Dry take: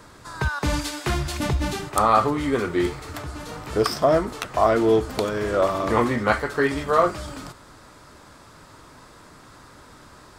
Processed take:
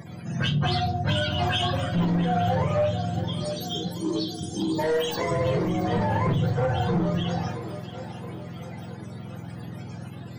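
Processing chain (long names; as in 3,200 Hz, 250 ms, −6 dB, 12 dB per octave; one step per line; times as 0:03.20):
frequency axis turned over on the octave scale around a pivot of 460 Hz
0:03.43–0:05.31: RIAA equalisation recording
in parallel at +1.5 dB: downward compressor, threshold −29 dBFS, peak gain reduction 17 dB
0:02.86–0:04.79: on the sum: time-frequency box erased 470–3,100 Hz
soft clipping −16 dBFS, distortion −11 dB
echo with a time of its own for lows and highs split 390 Hz, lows 185 ms, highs 672 ms, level −13 dB
on a send at −4 dB: convolution reverb RT60 0.35 s, pre-delay 6 ms
on the sum: brickwall limiter −14.5 dBFS, peak gain reduction 8 dB
dynamic equaliser 300 Hz, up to −6 dB, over −34 dBFS, Q 1.2
level that may rise only so fast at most 130 dB per second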